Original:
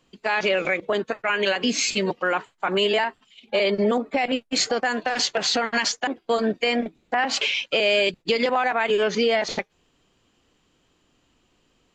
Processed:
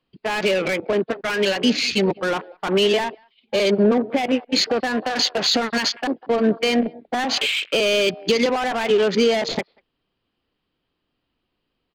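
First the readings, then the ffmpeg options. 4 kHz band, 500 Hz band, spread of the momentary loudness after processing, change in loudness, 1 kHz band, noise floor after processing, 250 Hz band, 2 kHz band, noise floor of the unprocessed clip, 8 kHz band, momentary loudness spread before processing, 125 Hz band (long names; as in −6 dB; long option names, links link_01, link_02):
+3.0 dB, +3.0 dB, 7 LU, +2.5 dB, −0.5 dB, −77 dBFS, +6.0 dB, −0.5 dB, −67 dBFS, −1.5 dB, 5 LU, +6.0 dB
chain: -filter_complex "[0:a]asplit=2[link_01][link_02];[link_02]adelay=190,highpass=300,lowpass=3400,asoftclip=type=hard:threshold=-20dB,volume=-18dB[link_03];[link_01][link_03]amix=inputs=2:normalize=0,aresample=11025,aresample=44100,afwtdn=0.02,acrossover=split=470|3500[link_04][link_05][link_06];[link_05]asoftclip=type=tanh:threshold=-29.5dB[link_07];[link_04][link_07][link_06]amix=inputs=3:normalize=0,volume=6dB"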